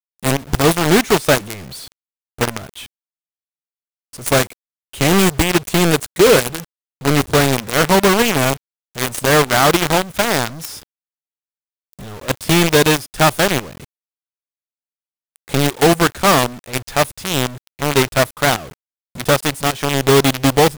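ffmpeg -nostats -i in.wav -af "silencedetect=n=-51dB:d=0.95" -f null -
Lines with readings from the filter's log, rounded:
silence_start: 2.86
silence_end: 4.13 | silence_duration: 1.27
silence_start: 10.83
silence_end: 11.93 | silence_duration: 1.10
silence_start: 13.85
silence_end: 15.36 | silence_duration: 1.51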